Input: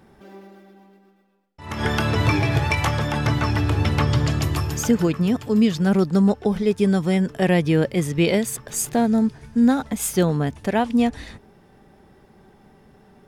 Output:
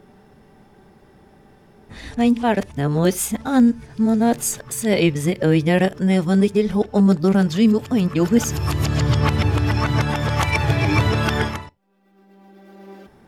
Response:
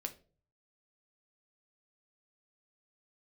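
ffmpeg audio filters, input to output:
-filter_complex "[0:a]areverse,asplit=2[link_01][link_02];[1:a]atrim=start_sample=2205,atrim=end_sample=4410[link_03];[link_02][link_03]afir=irnorm=-1:irlink=0,volume=-10.5dB[link_04];[link_01][link_04]amix=inputs=2:normalize=0"

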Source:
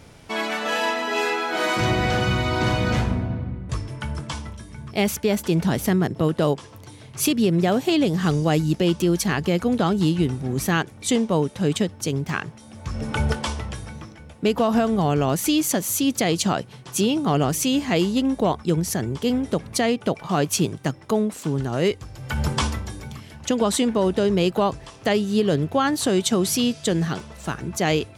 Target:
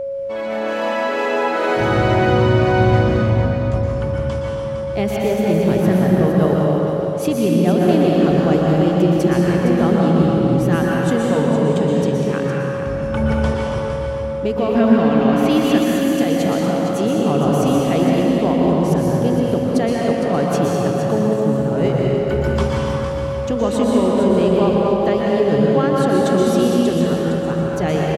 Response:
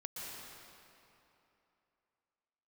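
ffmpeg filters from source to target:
-filter_complex "[0:a]asettb=1/sr,asplit=3[link_01][link_02][link_03];[link_01]atrim=end=14.754[link_04];[link_02]atrim=start=14.75:end=15.83,asetpts=PTS-STARTPTS,afade=type=in:duration=0.004:curve=qsin,afade=type=out:start_time=1.076:duration=0.004:curve=qsin,equalizer=frequency=125:width_type=o:width=1:gain=-9,equalizer=frequency=250:width_type=o:width=1:gain=9,equalizer=frequency=500:width_type=o:width=1:gain=-4,equalizer=frequency=2000:width_type=o:width=1:gain=10,equalizer=frequency=4000:width_type=o:width=1:gain=6,equalizer=frequency=8000:width_type=o:width=1:gain=-4[link_05];[link_03]atrim=start=15.826[link_06];[link_04][link_05]acrossfade=duration=0.004:curve1=hsin:curve2=qsin[link_07];[link_07][link_06]acrossfade=duration=0.004:curve1=qsin:curve2=hsin,aecho=1:1:460:0.355,dynaudnorm=framelen=130:gausssize=11:maxgain=4.5dB,highshelf=frequency=2300:gain=-12[link_08];[1:a]atrim=start_sample=2205[link_09];[link_08][link_09]afir=irnorm=-1:irlink=0,aeval=exprs='val(0)+0.0631*sin(2*PI*550*n/s)':channel_layout=same,volume=2dB"

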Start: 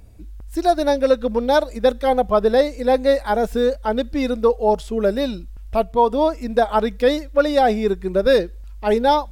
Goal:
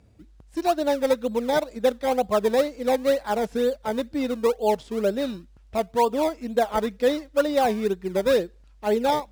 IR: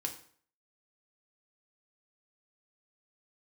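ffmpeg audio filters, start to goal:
-filter_complex "[0:a]highpass=100,lowpass=7100,asplit=2[link_01][link_02];[link_02]acrusher=samples=22:mix=1:aa=0.000001:lfo=1:lforange=22:lforate=2.1,volume=-9dB[link_03];[link_01][link_03]amix=inputs=2:normalize=0,volume=-7dB"

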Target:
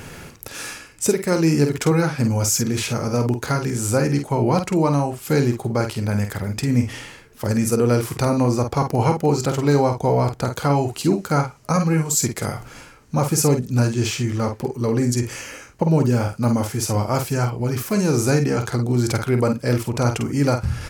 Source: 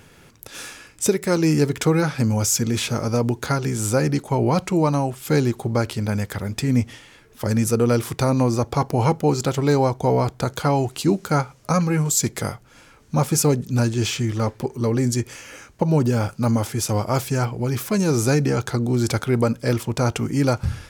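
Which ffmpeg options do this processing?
ffmpeg -i in.wav -filter_complex "[0:a]equalizer=frequency=3500:width=6.2:gain=-5.5,areverse,acompressor=mode=upward:threshold=-26dB:ratio=2.5,areverse,asplit=2[link_01][link_02];[link_02]adelay=49,volume=-7dB[link_03];[link_01][link_03]amix=inputs=2:normalize=0" out.wav

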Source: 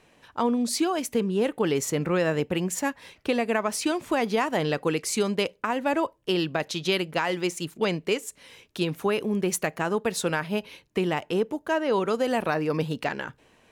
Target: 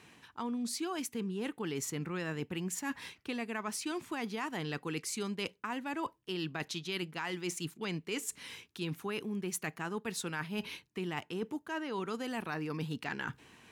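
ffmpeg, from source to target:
ffmpeg -i in.wav -af "highpass=75,equalizer=frequency=570:width_type=o:width=0.65:gain=-12.5,areverse,acompressor=threshold=-38dB:ratio=6,areverse,volume=3dB" out.wav

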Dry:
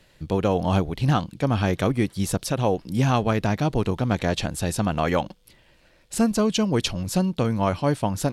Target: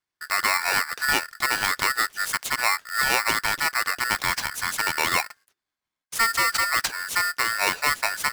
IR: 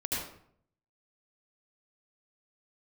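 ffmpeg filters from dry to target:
-af "lowshelf=frequency=110:gain=-10,agate=range=-29dB:threshold=-49dB:ratio=16:detection=peak,aeval=exprs='val(0)*sgn(sin(2*PI*1600*n/s))':channel_layout=same"

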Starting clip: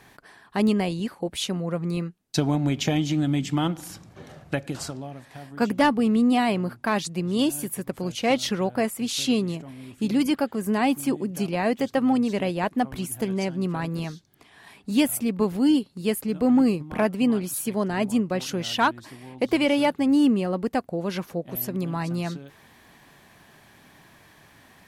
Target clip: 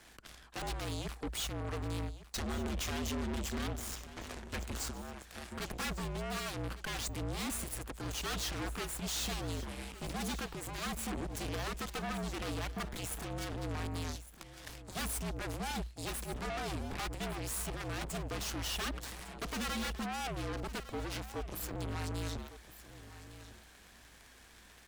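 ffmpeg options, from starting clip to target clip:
ffmpeg -i in.wav -af "equalizer=frequency=7500:width=2:gain=6,aeval=exprs='0.355*sin(PI/2*4.47*val(0)/0.355)':channel_layout=same,alimiter=limit=-18.5dB:level=0:latency=1:release=35,equalizer=frequency=125:width_type=o:width=0.33:gain=-4,equalizer=frequency=200:width_type=o:width=0.33:gain=-11,equalizer=frequency=630:width_type=o:width=0.33:gain=-7,equalizer=frequency=1000:width_type=o:width=0.33:gain=-5,equalizer=frequency=12500:width_type=o:width=0.33:gain=-5,aeval=exprs='0.188*(cos(1*acos(clip(val(0)/0.188,-1,1)))-cos(1*PI/2))+0.0473*(cos(3*acos(clip(val(0)/0.188,-1,1)))-cos(3*PI/2))+0.0211*(cos(4*acos(clip(val(0)/0.188,-1,1)))-cos(4*PI/2))+0.0168*(cos(5*acos(clip(val(0)/0.188,-1,1)))-cos(5*PI/2))+0.0237*(cos(7*acos(clip(val(0)/0.188,-1,1)))-cos(7*PI/2))':channel_layout=same,afreqshift=-59,asoftclip=type=tanh:threshold=-28.5dB,aecho=1:1:1155:0.178,volume=-5dB" out.wav

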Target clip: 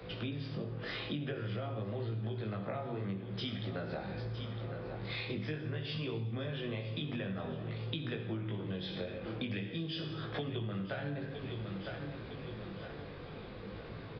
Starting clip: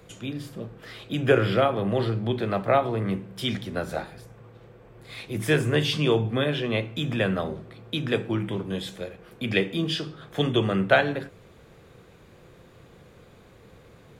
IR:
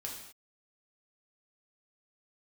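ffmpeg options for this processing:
-filter_complex "[0:a]acrossover=split=100|200[link_01][link_02][link_03];[link_01]acompressor=threshold=-45dB:ratio=4[link_04];[link_02]acompressor=threshold=-35dB:ratio=4[link_05];[link_03]acompressor=threshold=-33dB:ratio=4[link_06];[link_04][link_05][link_06]amix=inputs=3:normalize=0,asplit=2[link_07][link_08];[1:a]atrim=start_sample=2205,asetrate=48510,aresample=44100,adelay=62[link_09];[link_08][link_09]afir=irnorm=-1:irlink=0,volume=-6.5dB[link_10];[link_07][link_10]amix=inputs=2:normalize=0,flanger=delay=18:depth=2.6:speed=0.49,aecho=1:1:958|1916|2874|3832:0.168|0.0739|0.0325|0.0143,acompressor=threshold=-43dB:ratio=6,aresample=11025,aresample=44100,volume=7dB"

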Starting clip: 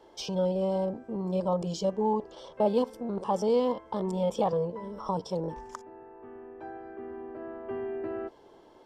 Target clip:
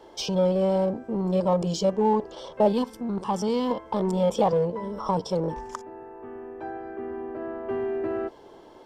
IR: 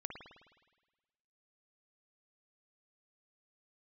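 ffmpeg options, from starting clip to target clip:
-filter_complex "[0:a]asettb=1/sr,asplit=3[link_01][link_02][link_03];[link_01]atrim=end=2.724[link_04];[link_02]atrim=start=2.72:end=3.71,asetpts=PTS-STARTPTS,afade=type=in:duration=0.004:curve=qsin,afade=type=out:start_time=0.986:duration=0.004:curve=qsin,equalizer=frequency=550:width=1.5:gain=-10.5[link_05];[link_03]atrim=start=3.706[link_06];[link_04][link_05]acrossfade=duration=0.004:curve1=hsin:curve2=qsin[link_07];[link_07][link_06]acrossfade=duration=0.004:curve1=qsin:curve2=hsin,asplit=2[link_08][link_09];[link_09]asoftclip=type=hard:threshold=-33dB,volume=-11.5dB[link_10];[link_08][link_10]amix=inputs=2:normalize=0,volume=4.5dB"

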